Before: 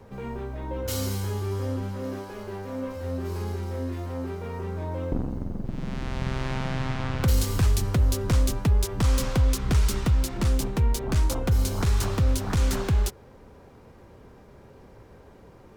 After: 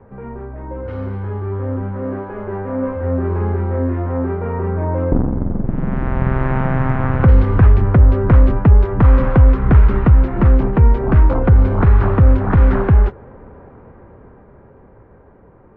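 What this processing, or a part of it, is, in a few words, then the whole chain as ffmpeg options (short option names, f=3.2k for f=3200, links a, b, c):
action camera in a waterproof case: -af "lowpass=f=1.8k:w=0.5412,lowpass=f=1.8k:w=1.3066,dynaudnorm=f=200:g=21:m=9dB,volume=3.5dB" -ar 22050 -c:a aac -b:a 64k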